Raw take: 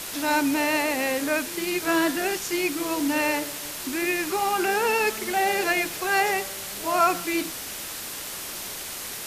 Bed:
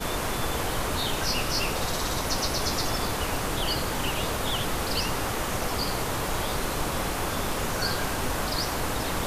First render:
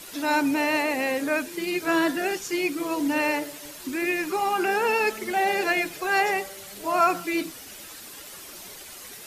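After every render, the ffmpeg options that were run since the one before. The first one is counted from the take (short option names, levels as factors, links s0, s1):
-af "afftdn=nr=10:nf=-35"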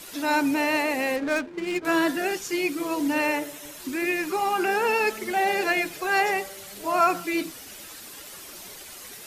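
-filter_complex "[0:a]asettb=1/sr,asplit=3[s0][s1][s2];[s0]atrim=end=1.164[s3];[s1]atrim=start=1.16:end=1.85,asetpts=PTS-STARTPTS,afade=t=in:d=0.004:c=qsin,afade=t=out:st=0.686:d=0.004:c=qsin,adynamicsmooth=sensitivity=5.5:basefreq=550[s4];[s2]atrim=start=1.846[s5];[s3][s4]acrossfade=d=0.004:c1=hsin:c2=qsin[s6];[s6][s5]acrossfade=d=0.004:c1=qsin:c2=hsin,asettb=1/sr,asplit=3[s7][s8][s9];[s7]atrim=end=3.264[s10];[s8]atrim=start=3.26:end=3.77,asetpts=PTS-STARTPTS,afade=t=in:d=0.004:c=qsin,afade=t=out:st=0.506:d=0.004:c=qsin,bandreject=f=4600:w=6.2[s11];[s9]atrim=start=3.766[s12];[s10][s11]acrossfade=d=0.004:c1=hsin:c2=qsin[s13];[s13][s12]acrossfade=d=0.004:c1=qsin:c2=hsin"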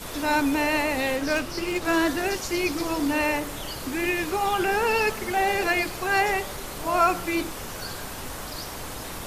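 -filter_complex "[1:a]volume=0.398[s0];[0:a][s0]amix=inputs=2:normalize=0"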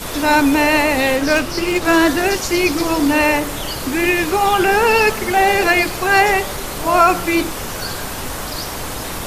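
-af "volume=2.99,alimiter=limit=0.794:level=0:latency=1"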